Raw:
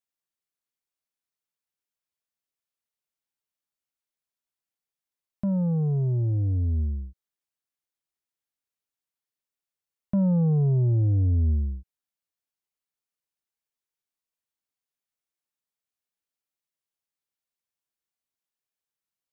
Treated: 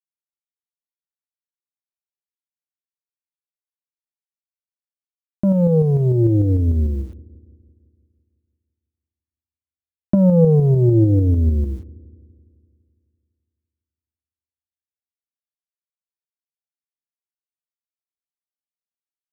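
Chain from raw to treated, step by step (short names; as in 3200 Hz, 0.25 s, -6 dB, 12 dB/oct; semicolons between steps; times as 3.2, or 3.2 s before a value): in parallel at +3 dB: vocal rider 2 s; on the sum: bit-crush 9-bit; small resonant body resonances 340/480 Hz, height 15 dB, ringing for 45 ms; tremolo saw up 6.7 Hz, depth 40%; dark delay 0.168 s, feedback 61%, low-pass 510 Hz, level -21 dB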